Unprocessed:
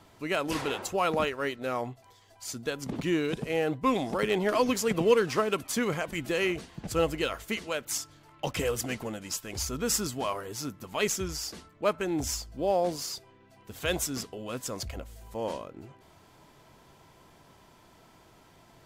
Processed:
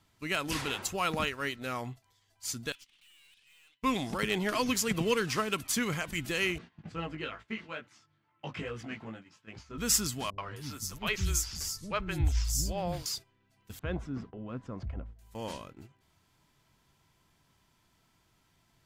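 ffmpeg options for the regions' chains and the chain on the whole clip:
-filter_complex "[0:a]asettb=1/sr,asplit=3[s0][s1][s2];[s0]atrim=end=2.724[s3];[s1]atrim=start=2.72:end=3.83,asetpts=PTS-STARTPTS,afade=t=in:d=0.004:c=qsin,afade=t=out:st=1.106:d=0.004:c=qsin,highpass=f=2900:t=q:w=2.8,aemphasis=mode=reproduction:type=bsi,aeval=exprs='(tanh(316*val(0)+0.3)-tanh(0.3))/316':c=same[s4];[s2]atrim=start=3.826[s5];[s3][s4]acrossfade=d=0.004:c1=hsin:c2=qsin[s6];[s6][s5]acrossfade=d=0.004:c1=qsin:c2=hsin,asettb=1/sr,asplit=3[s7][s8][s9];[s7]atrim=end=6.584[s10];[s8]atrim=start=6.58:end=9.78,asetpts=PTS-STARTPTS,afade=t=in:d=0.004:c=qsin,afade=t=out:st=3.196:d=0.004:c=qsin,highpass=130,lowpass=2200,flanger=delay=17:depth=2.3:speed=2.3[s11];[s9]atrim=start=9.776[s12];[s10][s11]acrossfade=d=0.004:c1=hsin:c2=qsin[s13];[s13][s12]acrossfade=d=0.004:c1=qsin:c2=hsin,asettb=1/sr,asplit=3[s14][s15][s16];[s14]atrim=end=10.304[s17];[s15]atrim=start=10.3:end=13.06,asetpts=PTS-STARTPTS,afade=t=in:d=0.004:c=qsin,afade=t=out:st=2.756:d=0.004:c=qsin,asubboost=boost=8.5:cutoff=120,acrossover=split=310|4500[s18][s19][s20];[s19]adelay=80[s21];[s20]adelay=260[s22];[s18][s21][s22]amix=inputs=3:normalize=0,atrim=end_sample=121716[s23];[s16]atrim=start=13.056[s24];[s17][s23]acrossfade=d=0.004:c1=hsin:c2=qsin[s25];[s25][s24]acrossfade=d=0.004:c1=qsin:c2=hsin,asettb=1/sr,asplit=3[s26][s27][s28];[s26]atrim=end=13.794[s29];[s27]atrim=start=13.79:end=15.19,asetpts=PTS-STARTPTS,afade=t=in:d=0.004:c=qsin,afade=t=out:st=1.396:d=0.004:c=qsin,lowpass=1100,equalizer=f=210:w=1.4:g=2.5[s30];[s28]atrim=start=15.186[s31];[s29][s30]acrossfade=d=0.004:c1=hsin:c2=qsin[s32];[s32][s31]acrossfade=d=0.004:c1=qsin:c2=hsin,agate=range=0.282:threshold=0.00631:ratio=16:detection=peak,equalizer=f=540:w=0.63:g=-11,volume=1.33"

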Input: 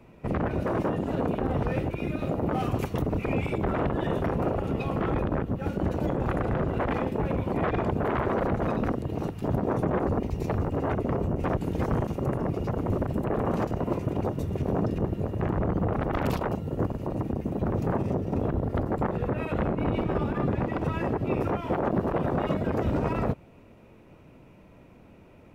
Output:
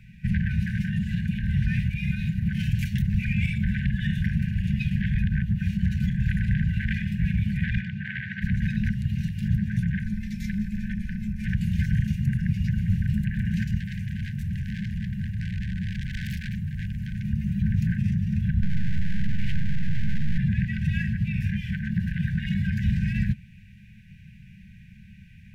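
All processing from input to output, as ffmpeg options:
-filter_complex "[0:a]asettb=1/sr,asplit=3[s0][s1][s2];[s0]atrim=end=7.814[s3];[s1]atrim=start=7.81:end=8.42,asetpts=PTS-STARTPTS,afade=t=in:d=0.004:c=qsin,afade=t=out:st=0.606:d=0.004:c=qsin,highpass=190,lowpass=3600,equalizer=f=280:w=1.3:g=-8.5[s4];[s2]atrim=start=8.416[s5];[s3][s4]acrossfade=d=0.004:c1=hsin:c2=qsin[s6];[s6][s5]acrossfade=d=0.004:c1=qsin:c2=hsin,asettb=1/sr,asplit=3[s7][s8][s9];[s7]atrim=end=10.044[s10];[s8]atrim=start=10.04:end=11.47,asetpts=PTS-STARTPTS,afade=t=in:d=0.004:c=qsin,afade=t=out:st=1.426:d=0.004:c=qsin,aecho=1:1:3.4:0.42,atrim=end_sample=63063,acrossover=split=120|900[s11][s12][s13];[s11]acompressor=threshold=0.0282:ratio=4[s14];[s12]acompressor=threshold=0.01:ratio=4[s15];[s13]acompressor=threshold=0.0158:ratio=4[s16];[s14][s15][s16]amix=inputs=3:normalize=0,afreqshift=-300[s17];[s9]atrim=start=11.466[s18];[s10][s17]acrossfade=d=0.004:c1=hsin:c2=qsin[s19];[s19][s18]acrossfade=d=0.004:c1=qsin:c2=hsin,asettb=1/sr,asplit=3[s20][s21][s22];[s20]atrim=end=13.804[s23];[s21]atrim=start=13.8:end=17.25,asetpts=PTS-STARTPTS,afade=t=in:d=0.004:c=qsin,afade=t=out:st=3.446:d=0.004:c=qsin,equalizer=f=3900:w=1.1:g=-8,asoftclip=type=hard:threshold=0.0224[s24];[s22]atrim=start=17.246[s25];[s23][s24]acrossfade=d=0.004:c1=hsin:c2=qsin[s26];[s26][s25]acrossfade=d=0.004:c1=qsin:c2=hsin,asettb=1/sr,asplit=3[s27][s28][s29];[s27]atrim=end=18.624[s30];[s28]atrim=start=18.62:end=20.38,asetpts=PTS-STARTPTS,afade=t=in:d=0.004:c=qsin,afade=t=out:st=1.756:d=0.004:c=qsin,lowshelf=f=540:t=q:w=3:g=13.5,aeval=exprs='abs(val(0))':c=same[s31];[s29]atrim=start=20.376[s32];[s30][s31]acrossfade=d=0.004:c1=hsin:c2=qsin[s33];[s33][s32]acrossfade=d=0.004:c1=qsin:c2=hsin,alimiter=limit=0.1:level=0:latency=1:release=13,highshelf=f=5400:g=-7,afftfilt=real='re*(1-between(b*sr/4096,220,1500))':imag='im*(1-between(b*sr/4096,220,1500))':win_size=4096:overlap=0.75,volume=2.37"

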